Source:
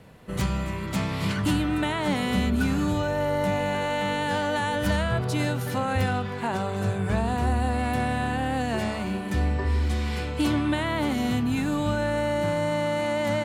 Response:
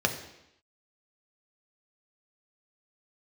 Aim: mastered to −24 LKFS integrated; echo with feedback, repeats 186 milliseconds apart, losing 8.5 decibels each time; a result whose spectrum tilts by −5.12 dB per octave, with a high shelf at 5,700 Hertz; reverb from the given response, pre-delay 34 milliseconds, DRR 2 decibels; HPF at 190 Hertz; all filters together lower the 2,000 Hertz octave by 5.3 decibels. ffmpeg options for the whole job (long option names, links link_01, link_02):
-filter_complex "[0:a]highpass=190,equalizer=frequency=2000:width_type=o:gain=-6.5,highshelf=frequency=5700:gain=-3.5,aecho=1:1:186|372|558|744:0.376|0.143|0.0543|0.0206,asplit=2[link_01][link_02];[1:a]atrim=start_sample=2205,adelay=34[link_03];[link_02][link_03]afir=irnorm=-1:irlink=0,volume=-13dB[link_04];[link_01][link_04]amix=inputs=2:normalize=0,volume=1dB"